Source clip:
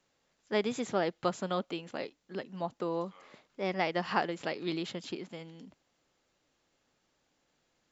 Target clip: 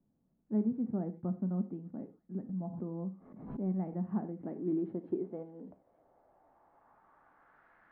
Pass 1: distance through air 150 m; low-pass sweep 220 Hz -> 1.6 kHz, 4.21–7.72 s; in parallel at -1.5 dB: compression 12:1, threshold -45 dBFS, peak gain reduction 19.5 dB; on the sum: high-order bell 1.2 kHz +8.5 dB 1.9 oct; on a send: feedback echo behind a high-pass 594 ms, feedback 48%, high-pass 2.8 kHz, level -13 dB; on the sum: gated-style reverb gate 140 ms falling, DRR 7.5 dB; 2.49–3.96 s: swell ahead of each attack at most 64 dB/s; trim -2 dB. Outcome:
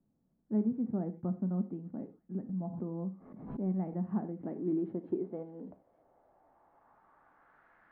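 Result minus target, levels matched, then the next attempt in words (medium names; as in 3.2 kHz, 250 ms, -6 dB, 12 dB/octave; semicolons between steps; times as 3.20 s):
compression: peak gain reduction -10 dB
distance through air 150 m; low-pass sweep 220 Hz -> 1.6 kHz, 4.21–7.72 s; in parallel at -1.5 dB: compression 12:1, threshold -56 dBFS, peak gain reduction 29.5 dB; on the sum: high-order bell 1.2 kHz +8.5 dB 1.9 oct; on a send: feedback echo behind a high-pass 594 ms, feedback 48%, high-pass 2.8 kHz, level -13 dB; on the sum: gated-style reverb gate 140 ms falling, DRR 7.5 dB; 2.49–3.96 s: swell ahead of each attack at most 64 dB/s; trim -2 dB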